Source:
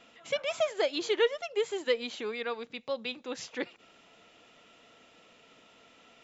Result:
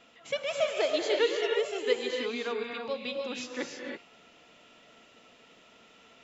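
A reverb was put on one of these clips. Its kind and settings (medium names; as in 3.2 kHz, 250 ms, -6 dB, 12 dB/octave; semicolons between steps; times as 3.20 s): gated-style reverb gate 350 ms rising, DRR 1 dB; trim -1 dB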